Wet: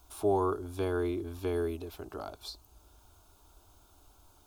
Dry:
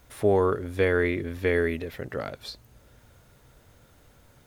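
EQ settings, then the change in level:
dynamic equaliser 2,400 Hz, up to −6 dB, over −43 dBFS, Q 0.84
parametric band 230 Hz −13.5 dB 0.43 octaves
phaser with its sweep stopped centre 510 Hz, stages 6
0.0 dB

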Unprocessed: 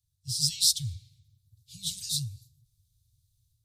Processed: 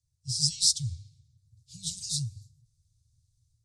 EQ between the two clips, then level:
low-pass filter 8,700 Hz 24 dB per octave
flat-topped bell 1,800 Hz −9.5 dB 2.5 octaves
mains-hum notches 50/100 Hz
+2.0 dB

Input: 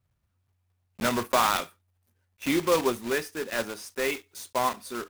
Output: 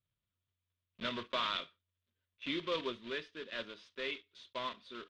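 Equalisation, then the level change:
Butterworth band-reject 800 Hz, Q 3.7
transistor ladder low-pass 3,800 Hz, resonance 65%
parametric band 70 Hz −13.5 dB 0.41 octaves
−2.5 dB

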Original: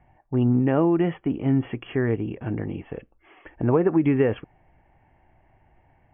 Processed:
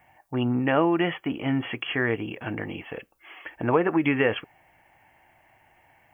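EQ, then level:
spectral tilt +4.5 dB per octave
parametric band 94 Hz +3 dB 1.2 octaves
notch filter 400 Hz, Q 12
+4.5 dB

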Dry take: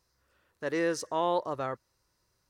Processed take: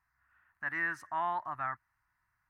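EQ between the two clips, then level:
drawn EQ curve 110 Hz 0 dB, 220 Hz −6 dB, 330 Hz −9 dB, 480 Hz −29 dB, 710 Hz +2 dB, 1,100 Hz +7 dB, 1,800 Hz +13 dB, 3,600 Hz −12 dB, 5,400 Hz −15 dB, 13,000 Hz −4 dB
−6.5 dB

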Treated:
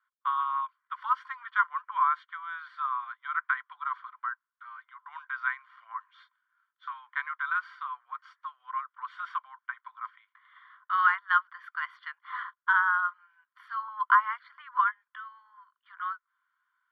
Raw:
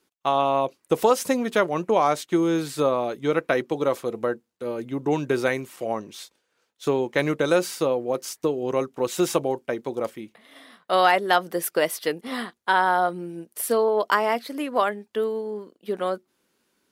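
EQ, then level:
Savitzky-Golay smoothing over 41 samples
Chebyshev high-pass with heavy ripple 1,000 Hz, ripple 6 dB
high-frequency loss of the air 380 metres
+7.0 dB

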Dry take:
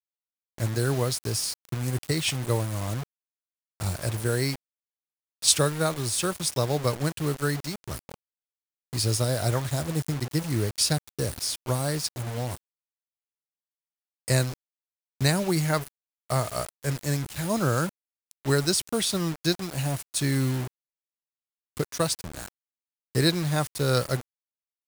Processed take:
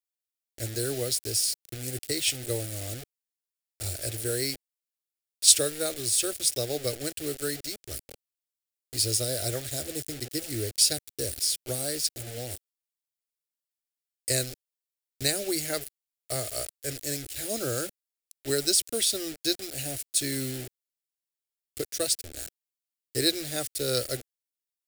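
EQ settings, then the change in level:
high-shelf EQ 3,500 Hz +7.5 dB
phaser with its sweep stopped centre 420 Hz, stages 4
notch filter 6,200 Hz, Q 17
−2.5 dB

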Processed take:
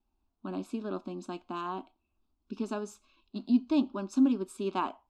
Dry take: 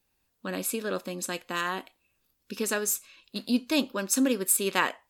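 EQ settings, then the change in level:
head-to-tape spacing loss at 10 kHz 32 dB
low-shelf EQ 140 Hz +6 dB
phaser with its sweep stopped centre 500 Hz, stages 6
+1.0 dB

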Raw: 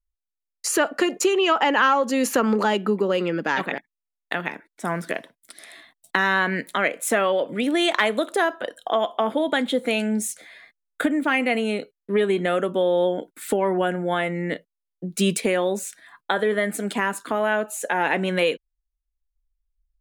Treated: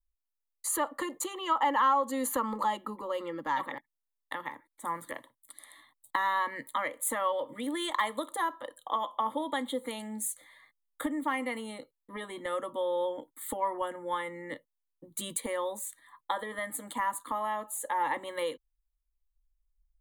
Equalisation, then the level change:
phaser with its sweep stopped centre 690 Hz, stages 6
phaser with its sweep stopped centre 1,500 Hz, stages 6
0.0 dB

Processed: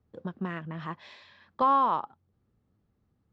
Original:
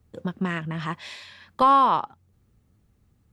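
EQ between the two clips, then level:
high-frequency loss of the air 200 metres
low-shelf EQ 110 Hz −10.5 dB
parametric band 2,400 Hz −5 dB 1.1 octaves
−4.0 dB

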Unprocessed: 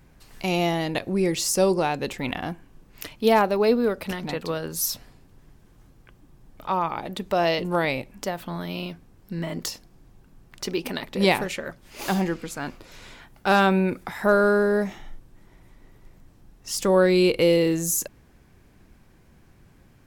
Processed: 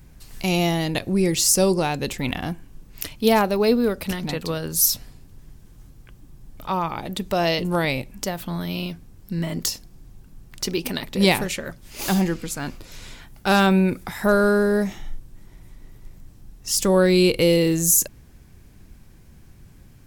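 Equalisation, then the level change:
low-shelf EQ 230 Hz +11 dB
high-shelf EQ 3,200 Hz +11 dB
−2.0 dB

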